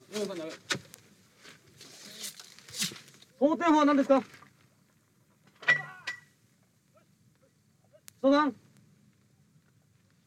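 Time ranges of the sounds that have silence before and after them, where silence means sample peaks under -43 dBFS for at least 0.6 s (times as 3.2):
5.62–6.18
8.08–8.77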